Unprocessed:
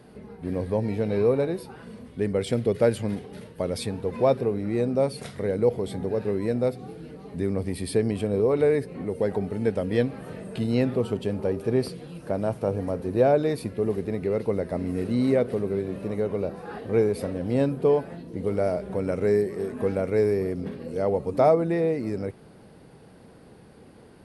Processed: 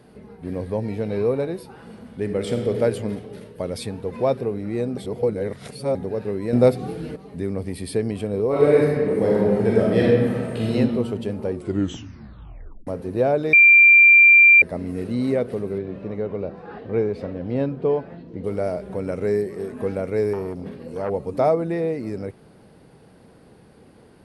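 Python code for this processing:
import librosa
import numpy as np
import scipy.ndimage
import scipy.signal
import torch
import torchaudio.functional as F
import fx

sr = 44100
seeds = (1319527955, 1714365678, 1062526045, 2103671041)

y = fx.reverb_throw(x, sr, start_s=1.66, length_s=1.07, rt60_s=2.3, drr_db=4.0)
y = fx.reverb_throw(y, sr, start_s=8.48, length_s=2.26, rt60_s=1.6, drr_db=-6.5)
y = fx.air_absorb(y, sr, metres=160.0, at=(15.78, 18.44))
y = fx.transformer_sat(y, sr, knee_hz=660.0, at=(20.33, 21.1))
y = fx.edit(y, sr, fx.reverse_span(start_s=4.97, length_s=0.98),
    fx.clip_gain(start_s=6.53, length_s=0.63, db=9.5),
    fx.tape_stop(start_s=11.49, length_s=1.38),
    fx.bleep(start_s=13.53, length_s=1.09, hz=2370.0, db=-7.5), tone=tone)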